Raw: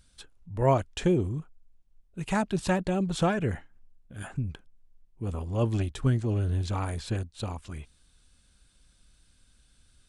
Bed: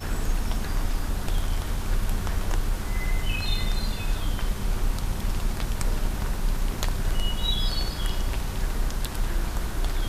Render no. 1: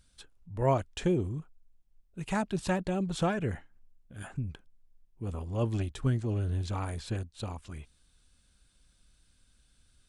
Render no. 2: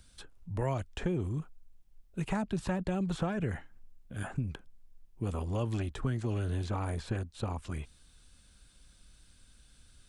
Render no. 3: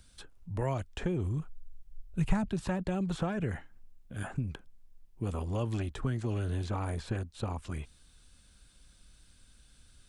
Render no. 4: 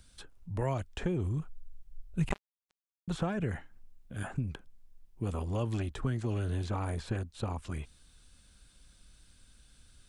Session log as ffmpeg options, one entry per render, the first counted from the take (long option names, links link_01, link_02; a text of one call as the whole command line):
ffmpeg -i in.wav -af "volume=-3.5dB" out.wav
ffmpeg -i in.wav -filter_complex "[0:a]asplit=2[link_01][link_02];[link_02]alimiter=level_in=0.5dB:limit=-24dB:level=0:latency=1,volume=-0.5dB,volume=0dB[link_03];[link_01][link_03]amix=inputs=2:normalize=0,acrossover=split=200|930|1900[link_04][link_05][link_06][link_07];[link_04]acompressor=threshold=-34dB:ratio=4[link_08];[link_05]acompressor=threshold=-36dB:ratio=4[link_09];[link_06]acompressor=threshold=-44dB:ratio=4[link_10];[link_07]acompressor=threshold=-51dB:ratio=4[link_11];[link_08][link_09][link_10][link_11]amix=inputs=4:normalize=0" out.wav
ffmpeg -i in.wav -filter_complex "[0:a]asettb=1/sr,asplit=3[link_01][link_02][link_03];[link_01]atrim=end=1.044[link_04];[link_02]atrim=start=1.04:end=2.49,asetpts=PTS-STARTPTS,afade=type=in:duration=0.004:curve=qsin,afade=type=out:start_time=1.446:duration=0.004:curve=qsin,asubboost=boost=11:cutoff=140[link_05];[link_03]atrim=start=2.486[link_06];[link_04][link_05]acrossfade=duration=0.004:curve1=hsin:curve2=qsin[link_07];[link_07][link_06]acrossfade=duration=0.004:curve1=qsin:curve2=hsin" out.wav
ffmpeg -i in.wav -filter_complex "[0:a]asettb=1/sr,asplit=3[link_01][link_02][link_03];[link_01]atrim=end=2.294[link_04];[link_02]atrim=start=2.29:end=3.08,asetpts=PTS-STARTPTS,afade=type=in:duration=0.004:curve=qsin,afade=type=out:start_time=0.786:duration=0.004:curve=qsin,acrusher=bits=2:mix=0:aa=0.5[link_05];[link_03]atrim=start=3.076[link_06];[link_04][link_05]acrossfade=duration=0.004:curve1=hsin:curve2=qsin[link_07];[link_07][link_06]acrossfade=duration=0.004:curve1=qsin:curve2=hsin" out.wav